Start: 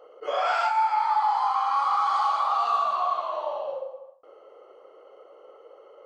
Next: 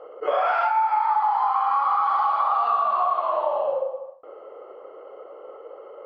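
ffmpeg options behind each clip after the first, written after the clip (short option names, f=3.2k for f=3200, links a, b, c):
-af "lowpass=2k,acompressor=threshold=-27dB:ratio=6,volume=8.5dB"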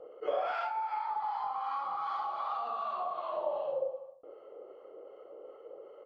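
-filter_complex "[0:a]firequalizer=gain_entry='entry(150,0);entry(1000,-13);entry(3600,-4)':delay=0.05:min_phase=1,acrossover=split=880[a][b];[a]aeval=exprs='val(0)*(1-0.5/2+0.5/2*cos(2*PI*2.6*n/s))':c=same[c];[b]aeval=exprs='val(0)*(1-0.5/2-0.5/2*cos(2*PI*2.6*n/s))':c=same[d];[c][d]amix=inputs=2:normalize=0"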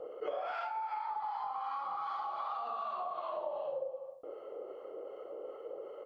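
-af "acompressor=threshold=-43dB:ratio=3,volume=5dB"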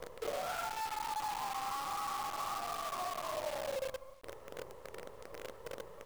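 -af "flanger=delay=5.9:depth=1.6:regen=-76:speed=0.54:shape=sinusoidal,acrusher=bits=8:dc=4:mix=0:aa=0.000001,volume=3dB"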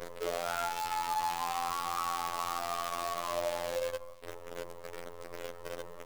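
-af "afftfilt=real='hypot(re,im)*cos(PI*b)':imag='0':win_size=2048:overlap=0.75,volume=7.5dB"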